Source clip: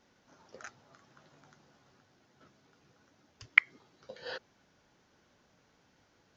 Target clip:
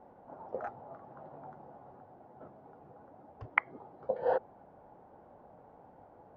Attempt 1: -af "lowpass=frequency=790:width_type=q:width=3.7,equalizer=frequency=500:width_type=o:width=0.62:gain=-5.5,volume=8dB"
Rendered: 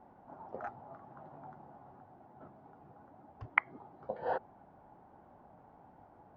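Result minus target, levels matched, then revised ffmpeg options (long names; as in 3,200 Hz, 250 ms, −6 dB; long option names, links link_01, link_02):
500 Hz band −4.0 dB
-af "lowpass=frequency=790:width_type=q:width=3.7,equalizer=frequency=500:width_type=o:width=0.62:gain=3,volume=8dB"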